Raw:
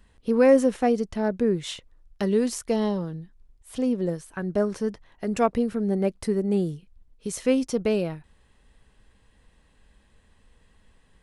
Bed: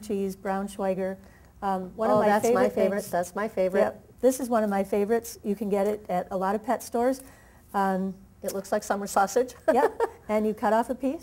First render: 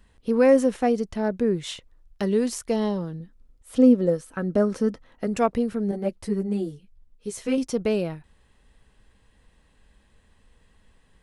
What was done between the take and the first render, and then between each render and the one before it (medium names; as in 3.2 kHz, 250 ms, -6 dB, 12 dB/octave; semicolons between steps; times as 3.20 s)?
3.20–5.27 s: small resonant body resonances 260/500/1300 Hz, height 10 dB; 5.91–7.58 s: three-phase chorus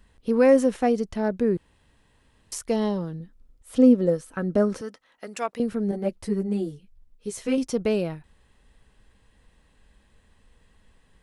1.57–2.52 s: room tone; 4.81–5.60 s: high-pass 1.3 kHz 6 dB/octave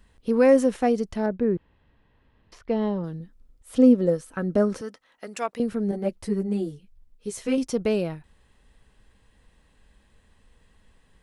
1.26–3.04 s: distance through air 310 m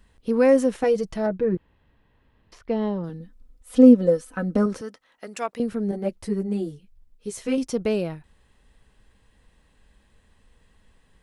0.83–1.55 s: comb 6.2 ms, depth 70%; 3.09–4.66 s: comb 4 ms, depth 61%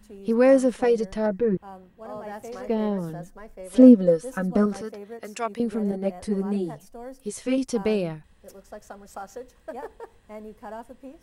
add bed -15 dB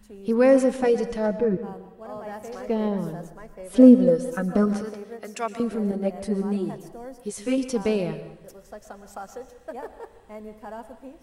plate-style reverb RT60 0.86 s, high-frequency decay 0.85×, pre-delay 105 ms, DRR 11 dB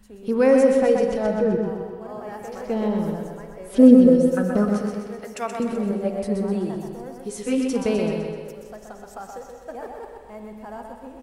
feedback delay 127 ms, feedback 54%, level -5.5 dB; spring tank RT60 1.8 s, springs 42/54 ms, chirp 50 ms, DRR 9 dB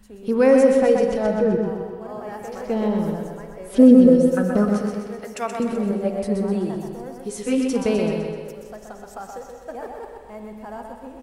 trim +1.5 dB; peak limiter -3 dBFS, peak gain reduction 2.5 dB